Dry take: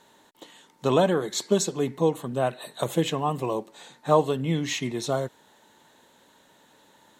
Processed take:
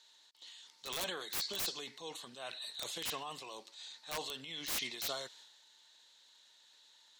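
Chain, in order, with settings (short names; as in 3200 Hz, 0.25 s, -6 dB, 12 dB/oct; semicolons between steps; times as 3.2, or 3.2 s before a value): band-pass 4500 Hz, Q 2.6; wrapped overs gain 33.5 dB; transient shaper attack -5 dB, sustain +7 dB; gain +4.5 dB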